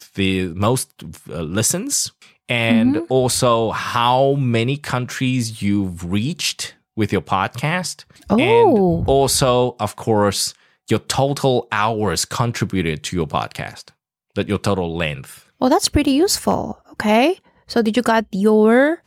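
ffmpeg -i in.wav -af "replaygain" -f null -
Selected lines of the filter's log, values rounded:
track_gain = -1.7 dB
track_peak = 0.483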